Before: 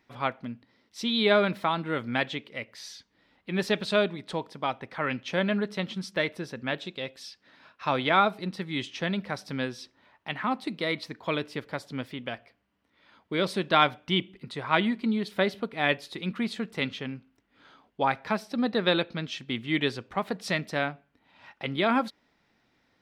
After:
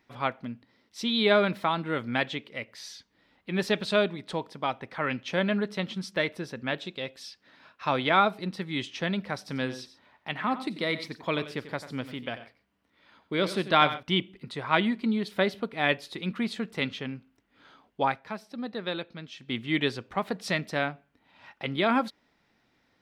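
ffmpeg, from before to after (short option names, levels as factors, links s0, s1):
-filter_complex "[0:a]asettb=1/sr,asplit=3[s0][s1][s2];[s0]atrim=end=9.384[s3];[s1]atrim=start=9.38:end=14.03,asetpts=PTS-STARTPTS,afade=t=in:d=0.004:c=qsin,afade=t=out:st=4.646:d=0.004:c=qsin,aecho=1:1:92|131:0.224|0.1,atrim=end_sample=205065[s4];[s2]atrim=start=14.026[s5];[s3][s4]acrossfade=d=0.004:c1=hsin:c2=qsin[s6];[s6][s5]acrossfade=d=0.004:c1=qsin:c2=hsin,asplit=3[s7][s8][s9];[s7]atrim=end=18.21,asetpts=PTS-STARTPTS,afade=t=out:st=18.05:d=0.16:silence=0.375837[s10];[s8]atrim=start=18.21:end=19.38,asetpts=PTS-STARTPTS,volume=0.376[s11];[s9]atrim=start=19.38,asetpts=PTS-STARTPTS,afade=t=in:d=0.16:silence=0.375837[s12];[s10][s11][s12]concat=n=3:v=0:a=1"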